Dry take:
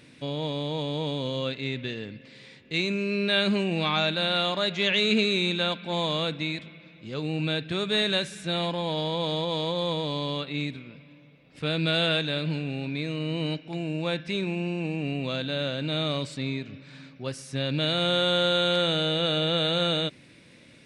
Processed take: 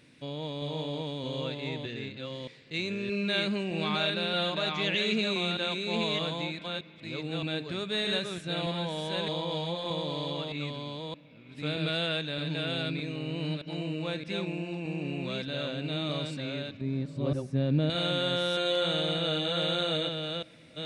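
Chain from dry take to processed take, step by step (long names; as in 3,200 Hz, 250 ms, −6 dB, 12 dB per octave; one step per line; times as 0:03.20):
delay that plays each chunk backwards 619 ms, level −3 dB
0:16.81–0:17.90: tilt shelving filter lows +10 dB
on a send: convolution reverb RT60 3.6 s, pre-delay 65 ms, DRR 24 dB
on the sum: level −6 dB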